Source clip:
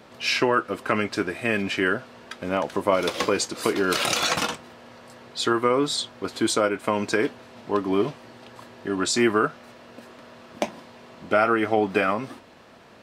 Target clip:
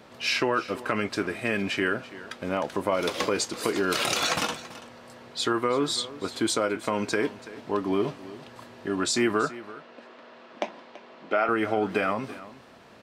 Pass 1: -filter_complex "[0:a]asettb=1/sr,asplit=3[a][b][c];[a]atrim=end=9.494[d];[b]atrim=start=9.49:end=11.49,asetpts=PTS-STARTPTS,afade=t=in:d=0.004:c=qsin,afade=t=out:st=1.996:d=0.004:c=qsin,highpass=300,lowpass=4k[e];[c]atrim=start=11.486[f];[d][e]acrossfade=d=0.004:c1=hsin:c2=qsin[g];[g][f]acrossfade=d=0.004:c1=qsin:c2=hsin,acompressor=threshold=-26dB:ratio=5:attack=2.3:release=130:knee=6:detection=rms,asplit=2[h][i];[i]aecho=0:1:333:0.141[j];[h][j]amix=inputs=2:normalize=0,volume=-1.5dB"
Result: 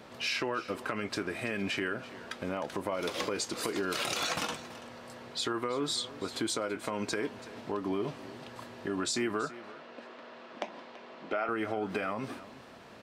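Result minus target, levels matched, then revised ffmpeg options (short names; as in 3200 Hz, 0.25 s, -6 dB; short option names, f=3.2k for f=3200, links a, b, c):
compressor: peak gain reduction +9 dB
-filter_complex "[0:a]asettb=1/sr,asplit=3[a][b][c];[a]atrim=end=9.494[d];[b]atrim=start=9.49:end=11.49,asetpts=PTS-STARTPTS,afade=t=in:d=0.004:c=qsin,afade=t=out:st=1.996:d=0.004:c=qsin,highpass=300,lowpass=4k[e];[c]atrim=start=11.486[f];[d][e]acrossfade=d=0.004:c1=hsin:c2=qsin[g];[g][f]acrossfade=d=0.004:c1=qsin:c2=hsin,acompressor=threshold=-14.5dB:ratio=5:attack=2.3:release=130:knee=6:detection=rms,asplit=2[h][i];[i]aecho=0:1:333:0.141[j];[h][j]amix=inputs=2:normalize=0,volume=-1.5dB"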